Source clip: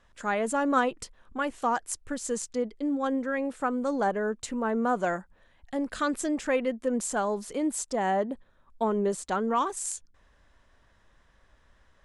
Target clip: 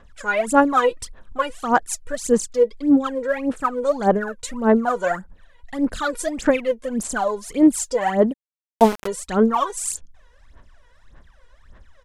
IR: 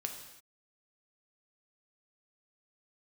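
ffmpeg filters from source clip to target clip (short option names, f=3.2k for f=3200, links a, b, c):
-filter_complex "[0:a]aphaser=in_gain=1:out_gain=1:delay=2.1:decay=0.8:speed=1.7:type=sinusoidal,asplit=3[a][b][c];[a]afade=t=out:st=8.32:d=0.02[d];[b]aeval=exprs='val(0)*gte(abs(val(0)),0.0708)':c=same,afade=t=in:st=8.32:d=0.02,afade=t=out:st=9.06:d=0.02[e];[c]afade=t=in:st=9.06:d=0.02[f];[d][e][f]amix=inputs=3:normalize=0,aresample=32000,aresample=44100,volume=2dB"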